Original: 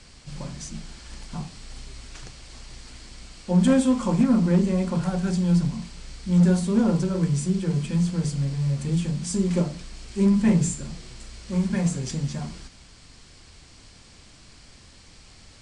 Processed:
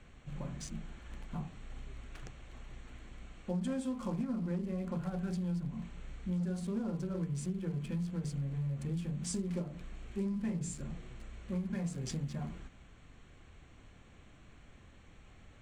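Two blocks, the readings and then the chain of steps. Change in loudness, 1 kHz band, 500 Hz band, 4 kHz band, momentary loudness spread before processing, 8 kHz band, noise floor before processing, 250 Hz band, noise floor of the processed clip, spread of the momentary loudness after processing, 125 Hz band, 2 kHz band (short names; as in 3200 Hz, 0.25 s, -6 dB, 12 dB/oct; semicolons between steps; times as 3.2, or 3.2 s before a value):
-15.0 dB, -14.0 dB, -14.0 dB, -15.0 dB, 22 LU, -13.0 dB, -50 dBFS, -14.5 dB, -58 dBFS, 15 LU, -13.0 dB, -13.5 dB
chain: Wiener smoothing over 9 samples; notch 930 Hz, Q 14; compressor, threshold -28 dBFS, peak gain reduction 13 dB; gain -5.5 dB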